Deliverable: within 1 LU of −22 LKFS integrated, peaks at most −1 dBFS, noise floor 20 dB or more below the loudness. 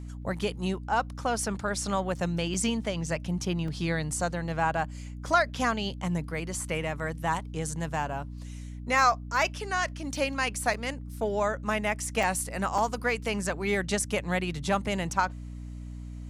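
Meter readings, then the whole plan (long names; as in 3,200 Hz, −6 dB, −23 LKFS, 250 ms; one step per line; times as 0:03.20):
number of dropouts 5; longest dropout 3.2 ms; mains hum 60 Hz; hum harmonics up to 300 Hz; level of the hum −37 dBFS; integrated loudness −29.5 LKFS; sample peak −10.0 dBFS; target loudness −22.0 LKFS
→ repair the gap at 0:02.54/0:03.68/0:10.74/0:12.23/0:12.78, 3.2 ms
mains-hum notches 60/120/180/240/300 Hz
level +7.5 dB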